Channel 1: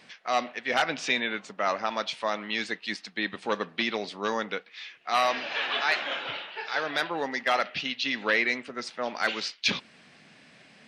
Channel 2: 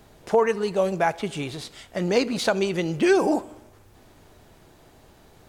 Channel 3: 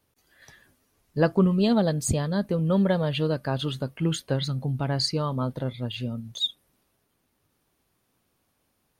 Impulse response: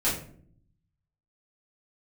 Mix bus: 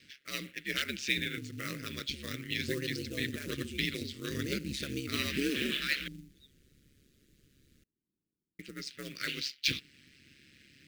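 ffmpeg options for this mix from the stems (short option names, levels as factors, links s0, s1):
-filter_complex "[0:a]volume=0.944,asplit=3[s0][s1][s2];[s0]atrim=end=6.08,asetpts=PTS-STARTPTS,afade=t=out:st=6.076:d=0.004:c=hsin[s3];[s1]atrim=start=6.08:end=8.59,asetpts=PTS-STARTPTS,volume=0[s4];[s2]atrim=start=8.59,asetpts=PTS-STARTPTS,afade=t=in:d=0.004:c=hsin[s5];[s3][s4][s5]concat=n=3:v=0:a=1[s6];[1:a]adelay=2350,volume=0.398[s7];[2:a]bandpass=f=280:t=q:w=1.4:csg=0,acompressor=threshold=0.0316:ratio=6,volume=0.447[s8];[s6][s7][s8]amix=inputs=3:normalize=0,aeval=exprs='val(0)*sin(2*PI*69*n/s)':c=same,acrusher=bits=4:mode=log:mix=0:aa=0.000001,asuperstop=centerf=830:order=4:qfactor=0.51"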